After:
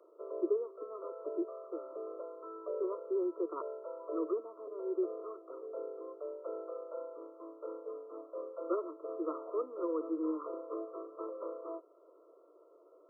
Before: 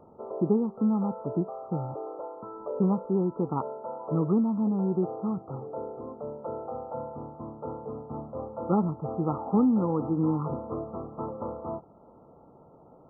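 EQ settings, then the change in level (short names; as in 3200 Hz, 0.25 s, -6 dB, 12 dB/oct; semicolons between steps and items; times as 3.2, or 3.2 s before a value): steep high-pass 320 Hz 96 dB/oct; Butterworth band-stop 820 Hz, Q 2.2; -4.0 dB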